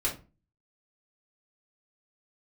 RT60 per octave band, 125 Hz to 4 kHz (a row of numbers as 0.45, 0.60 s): 0.50, 0.45, 0.35, 0.30, 0.25, 0.20 s